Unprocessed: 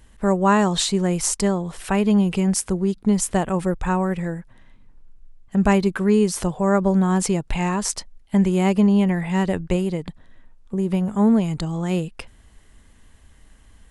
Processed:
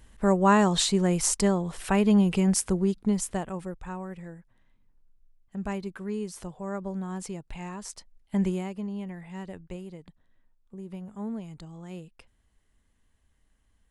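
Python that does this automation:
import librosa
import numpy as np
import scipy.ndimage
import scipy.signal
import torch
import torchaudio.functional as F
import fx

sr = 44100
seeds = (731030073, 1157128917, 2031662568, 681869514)

y = fx.gain(x, sr, db=fx.line((2.82, -3.0), (3.8, -15.5), (7.95, -15.5), (8.49, -6.5), (8.69, -18.0)))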